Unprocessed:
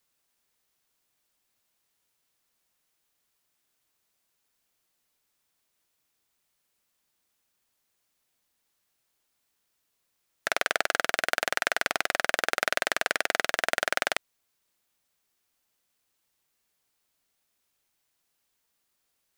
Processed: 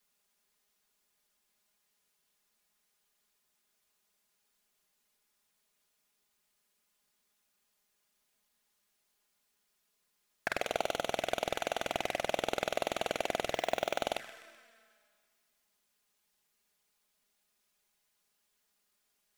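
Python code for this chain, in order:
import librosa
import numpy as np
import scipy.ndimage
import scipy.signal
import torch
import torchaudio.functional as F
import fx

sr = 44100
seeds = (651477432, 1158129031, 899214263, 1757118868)

p1 = fx.hum_notches(x, sr, base_hz=50, count=3)
p2 = np.clip(p1, -10.0 ** (-19.5 / 20.0), 10.0 ** (-19.5 / 20.0))
p3 = p1 + (p2 * librosa.db_to_amplitude(-10.0))
p4 = fx.rev_schroeder(p3, sr, rt60_s=2.0, comb_ms=27, drr_db=18.0)
p5 = fx.env_flanger(p4, sr, rest_ms=4.9, full_db=-23.5)
p6 = p5 + fx.echo_feedback(p5, sr, ms=127, feedback_pct=49, wet_db=-23.5, dry=0)
p7 = fx.resample_bad(p6, sr, factor=2, down='filtered', up='hold', at=(13.54, 14.02))
y = fx.slew_limit(p7, sr, full_power_hz=120.0)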